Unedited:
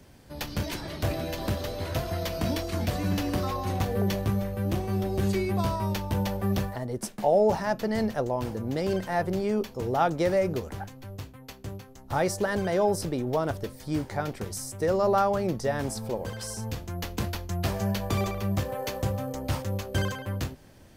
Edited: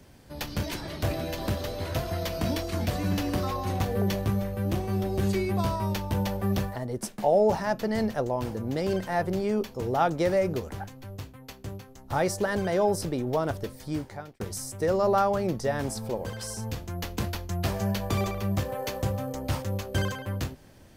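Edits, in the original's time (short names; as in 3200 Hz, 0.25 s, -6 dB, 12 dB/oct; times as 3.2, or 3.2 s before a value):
13.81–14.4 fade out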